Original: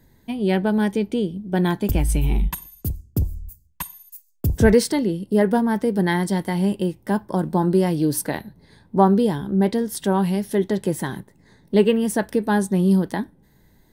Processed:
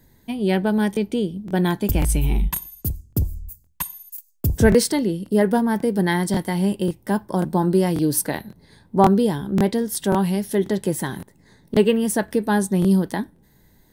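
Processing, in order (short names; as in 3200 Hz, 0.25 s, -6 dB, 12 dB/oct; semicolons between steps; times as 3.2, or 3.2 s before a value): high shelf 5200 Hz +5 dB; crackling interface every 0.54 s, samples 1024, repeat, from 0.92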